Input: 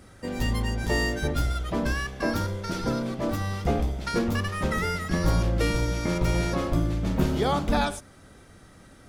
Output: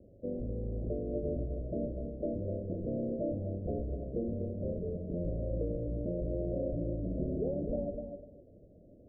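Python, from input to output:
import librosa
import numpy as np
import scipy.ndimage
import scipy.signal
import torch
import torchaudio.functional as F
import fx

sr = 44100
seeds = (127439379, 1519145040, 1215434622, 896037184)

p1 = fx.over_compress(x, sr, threshold_db=-29.0, ratio=-1.0)
p2 = x + (p1 * 10.0 ** (0.0 / 20.0))
p3 = scipy.signal.sosfilt(scipy.signal.butter(16, 640.0, 'lowpass', fs=sr, output='sos'), p2)
p4 = fx.low_shelf(p3, sr, hz=480.0, db=-12.0)
p5 = fx.echo_feedback(p4, sr, ms=250, feedback_pct=17, wet_db=-7.0)
y = p5 * 10.0 ** (-4.0 / 20.0)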